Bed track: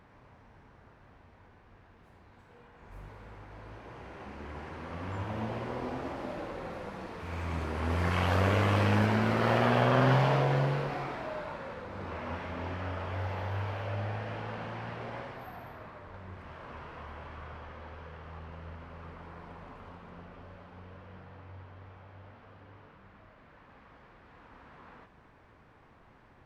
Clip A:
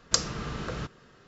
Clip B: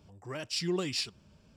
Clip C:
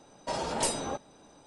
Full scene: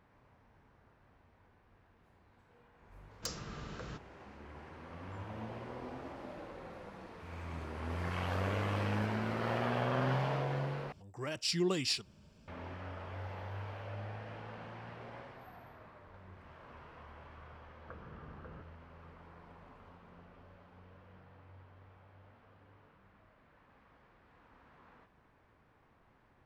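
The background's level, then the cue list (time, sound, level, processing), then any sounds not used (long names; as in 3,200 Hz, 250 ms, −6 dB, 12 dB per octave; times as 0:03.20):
bed track −8.5 dB
0:03.11: mix in A −10.5 dB + gain into a clipping stage and back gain 21.5 dB
0:10.92: overwrite with B −0.5 dB
0:17.76: mix in A −17 dB + Butterworth low-pass 1,700 Hz 72 dB per octave
not used: C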